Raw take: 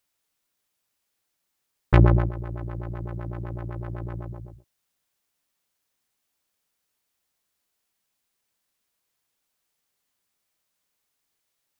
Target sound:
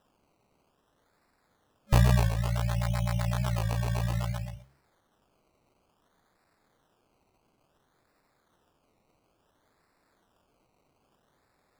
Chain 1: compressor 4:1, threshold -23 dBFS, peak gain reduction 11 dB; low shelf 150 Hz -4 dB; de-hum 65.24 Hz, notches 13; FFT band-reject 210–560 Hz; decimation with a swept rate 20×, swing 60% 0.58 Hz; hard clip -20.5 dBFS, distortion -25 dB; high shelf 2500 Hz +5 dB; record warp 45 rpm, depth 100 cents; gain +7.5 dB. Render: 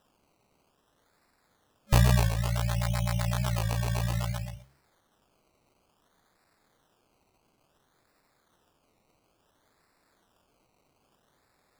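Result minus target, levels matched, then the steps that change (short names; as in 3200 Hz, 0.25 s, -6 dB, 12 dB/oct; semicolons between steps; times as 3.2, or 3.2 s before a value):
4000 Hz band +3.0 dB
remove: high shelf 2500 Hz +5 dB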